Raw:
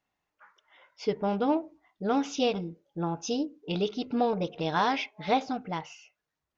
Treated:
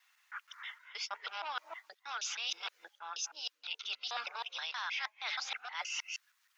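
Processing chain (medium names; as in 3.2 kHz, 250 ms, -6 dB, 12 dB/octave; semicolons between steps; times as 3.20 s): time reversed locally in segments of 158 ms; high-pass 1.3 kHz 24 dB/octave; in parallel at +2.5 dB: peak limiter -32 dBFS, peak gain reduction 11.5 dB; on the sum: harmonic-percussive split percussive +3 dB; reverse; compression 12:1, threshold -42 dBFS, peak gain reduction 18.5 dB; reverse; transient shaper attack -4 dB, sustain 0 dB; trim +7.5 dB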